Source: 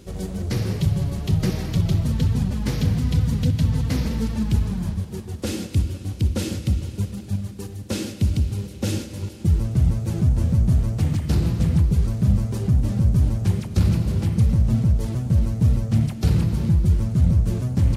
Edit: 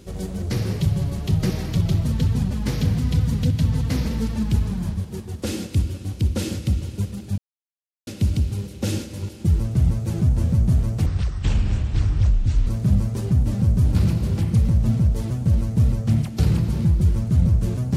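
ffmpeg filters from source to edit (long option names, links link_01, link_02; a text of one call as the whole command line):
ffmpeg -i in.wav -filter_complex "[0:a]asplit=6[link_01][link_02][link_03][link_04][link_05][link_06];[link_01]atrim=end=7.38,asetpts=PTS-STARTPTS,afade=type=out:start_time=7.376:duration=0.004:curve=hsin[link_07];[link_02]atrim=start=7.38:end=8.07,asetpts=PTS-STARTPTS,volume=0[link_08];[link_03]atrim=start=8.07:end=11.064,asetpts=PTS-STARTPTS,afade=type=in:duration=0.004:curve=hsin[link_09];[link_04]atrim=start=11.06:end=12.04,asetpts=PTS-STARTPTS,asetrate=26901,aresample=44100,atrim=end_sample=70849,asetpts=PTS-STARTPTS[link_10];[link_05]atrim=start=12.036:end=13.322[link_11];[link_06]atrim=start=13.788[link_12];[link_07][link_08][link_09]concat=n=3:v=0:a=1[link_13];[link_13][link_10]acrossfade=duration=0.004:curve1=hsin:curve2=hsin[link_14];[link_14][link_11]acrossfade=duration=0.004:curve1=hsin:curve2=hsin[link_15];[link_15][link_12]acrossfade=duration=0.004:curve1=hsin:curve2=hsin" out.wav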